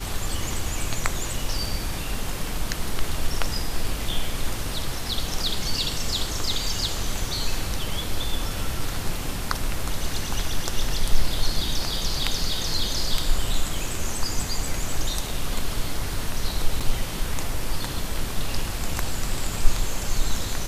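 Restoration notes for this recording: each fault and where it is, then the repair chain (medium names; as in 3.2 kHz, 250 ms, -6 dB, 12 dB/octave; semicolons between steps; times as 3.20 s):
16.80–16.81 s: dropout 6.2 ms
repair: interpolate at 16.80 s, 6.2 ms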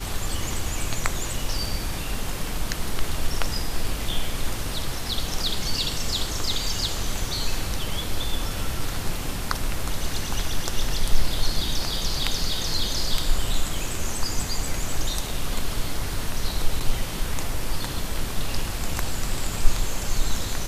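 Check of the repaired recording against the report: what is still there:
nothing left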